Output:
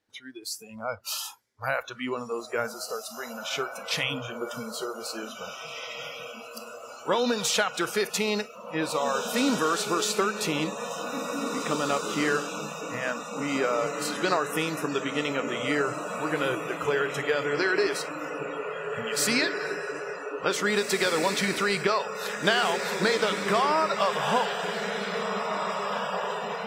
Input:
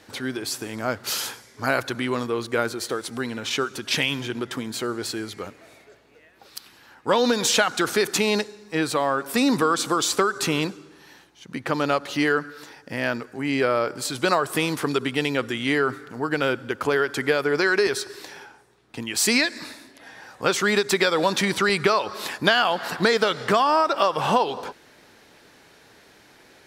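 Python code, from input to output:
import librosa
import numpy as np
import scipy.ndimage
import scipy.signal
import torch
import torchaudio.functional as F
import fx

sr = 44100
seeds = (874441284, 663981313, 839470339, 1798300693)

y = fx.echo_diffused(x, sr, ms=1990, feedback_pct=68, wet_db=-5)
y = fx.noise_reduce_blind(y, sr, reduce_db=23)
y = y * 10.0 ** (-5.0 / 20.0)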